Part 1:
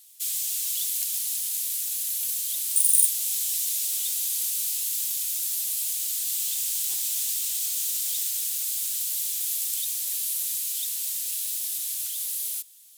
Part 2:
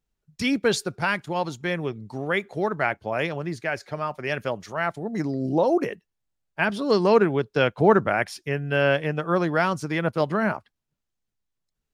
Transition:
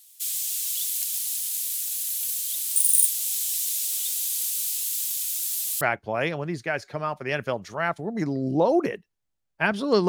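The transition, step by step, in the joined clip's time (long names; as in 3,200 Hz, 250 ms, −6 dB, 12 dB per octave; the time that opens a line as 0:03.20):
part 1
0:05.81: continue with part 2 from 0:02.79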